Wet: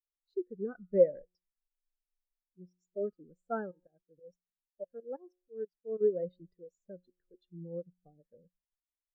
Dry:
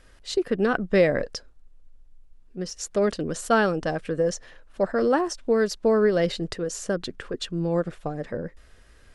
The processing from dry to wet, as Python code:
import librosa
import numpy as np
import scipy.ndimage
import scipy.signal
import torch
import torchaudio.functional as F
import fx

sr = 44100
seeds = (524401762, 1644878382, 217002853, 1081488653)

y = fx.tremolo_shape(x, sr, shape='saw_up', hz=6.2, depth_pct=90, at=(3.71, 6.01))
y = fx.comb_fb(y, sr, f0_hz=180.0, decay_s=1.2, harmonics='all', damping=0.0, mix_pct=60)
y = fx.spectral_expand(y, sr, expansion=2.5)
y = F.gain(torch.from_numpy(y), 3.0).numpy()